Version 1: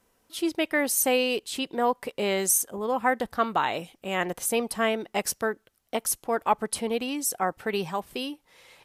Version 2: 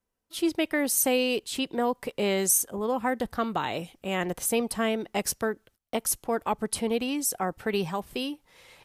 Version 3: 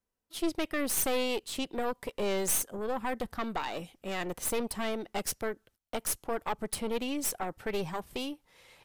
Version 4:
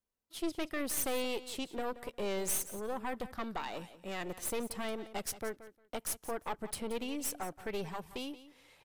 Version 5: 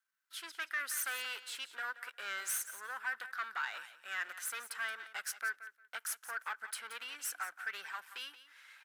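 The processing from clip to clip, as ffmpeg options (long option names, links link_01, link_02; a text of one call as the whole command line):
ffmpeg -i in.wav -filter_complex "[0:a]agate=range=-18dB:threshold=-57dB:ratio=16:detection=peak,lowshelf=frequency=150:gain=7.5,acrossover=split=490|3000[link_01][link_02][link_03];[link_02]acompressor=threshold=-30dB:ratio=2.5[link_04];[link_01][link_04][link_03]amix=inputs=3:normalize=0" out.wav
ffmpeg -i in.wav -af "aeval=exprs='(tanh(15.8*val(0)+0.75)-tanh(0.75))/15.8':channel_layout=same" out.wav
ffmpeg -i in.wav -af "aecho=1:1:177|354:0.178|0.0302,volume=-5dB" out.wav
ffmpeg -i in.wav -filter_complex "[0:a]aeval=exprs='if(lt(val(0),0),0.447*val(0),val(0))':channel_layout=same,highpass=frequency=1500:width_type=q:width=6.9,asplit=2[link_01][link_02];[link_02]asoftclip=type=tanh:threshold=-36dB,volume=-3.5dB[link_03];[link_01][link_03]amix=inputs=2:normalize=0,volume=-1dB" out.wav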